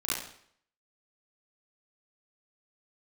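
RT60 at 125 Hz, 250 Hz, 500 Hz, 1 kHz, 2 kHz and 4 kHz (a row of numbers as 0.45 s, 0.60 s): 0.60 s, 0.60 s, 0.60 s, 0.60 s, 0.60 s, 0.60 s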